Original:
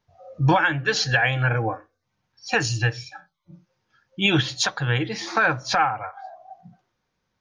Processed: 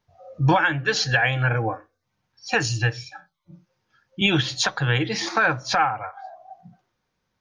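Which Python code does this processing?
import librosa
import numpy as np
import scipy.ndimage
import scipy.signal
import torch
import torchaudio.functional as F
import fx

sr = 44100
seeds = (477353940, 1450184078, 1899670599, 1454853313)

y = fx.band_squash(x, sr, depth_pct=70, at=(4.21, 5.29))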